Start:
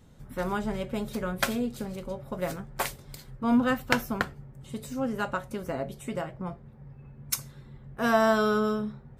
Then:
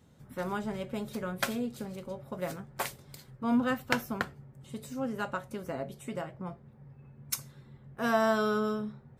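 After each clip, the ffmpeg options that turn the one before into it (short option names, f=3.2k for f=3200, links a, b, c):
-af "highpass=77,volume=-4dB"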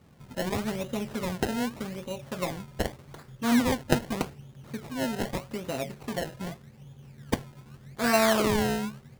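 -af "acrusher=samples=26:mix=1:aa=0.000001:lfo=1:lforange=26:lforate=0.83,volume=4dB"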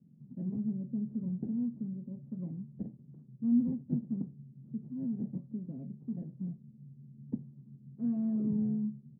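-af "asoftclip=type=tanh:threshold=-17dB,asuperpass=centerf=190:order=4:qfactor=1.7"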